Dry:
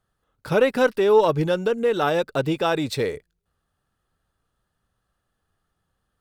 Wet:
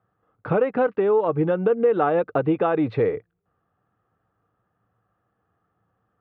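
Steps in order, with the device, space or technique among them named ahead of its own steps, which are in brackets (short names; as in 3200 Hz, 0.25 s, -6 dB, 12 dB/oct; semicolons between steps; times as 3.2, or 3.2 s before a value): bass amplifier (compressor 6:1, threshold -23 dBFS, peak gain reduction 11.5 dB; speaker cabinet 86–2400 Hz, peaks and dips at 110 Hz +10 dB, 190 Hz +6 dB, 310 Hz +7 dB, 470 Hz +7 dB, 740 Hz +8 dB, 1200 Hz +7 dB)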